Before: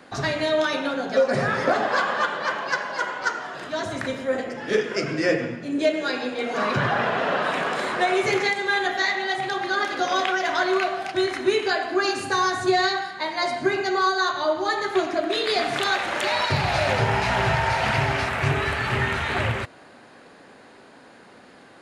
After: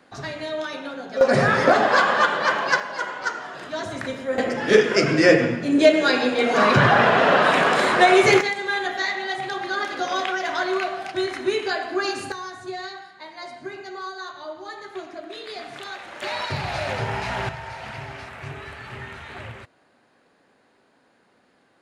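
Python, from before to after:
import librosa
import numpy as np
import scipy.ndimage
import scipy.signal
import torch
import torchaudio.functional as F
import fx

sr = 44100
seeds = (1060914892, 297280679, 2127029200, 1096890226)

y = fx.gain(x, sr, db=fx.steps((0.0, -7.0), (1.21, 5.0), (2.8, -1.5), (4.38, 7.0), (8.41, -2.0), (12.32, -12.5), (16.22, -5.0), (17.49, -13.0)))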